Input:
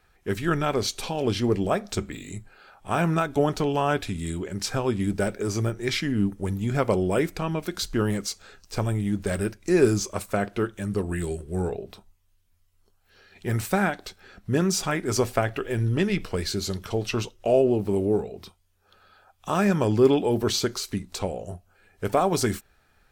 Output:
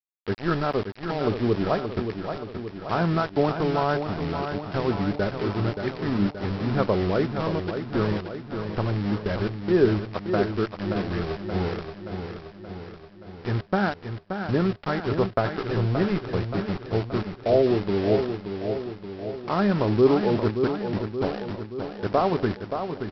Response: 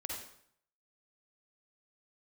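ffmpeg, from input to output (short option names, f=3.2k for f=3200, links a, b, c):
-af "lowpass=f=1.7k:w=0.5412,lowpass=f=1.7k:w=1.3066,aresample=11025,aeval=exprs='val(0)*gte(abs(val(0)),0.0335)':c=same,aresample=44100,aecho=1:1:576|1152|1728|2304|2880|3456|4032|4608:0.422|0.249|0.147|0.0866|0.0511|0.0301|0.0178|0.0105"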